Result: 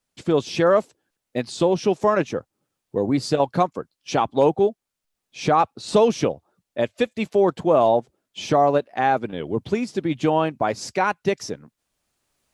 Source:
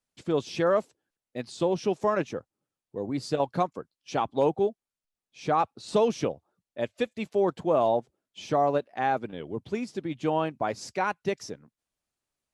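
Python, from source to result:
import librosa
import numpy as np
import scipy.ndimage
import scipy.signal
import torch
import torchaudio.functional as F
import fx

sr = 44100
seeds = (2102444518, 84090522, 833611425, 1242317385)

y = fx.recorder_agc(x, sr, target_db=-17.5, rise_db_per_s=7.4, max_gain_db=30)
y = F.gain(torch.from_numpy(y), 6.5).numpy()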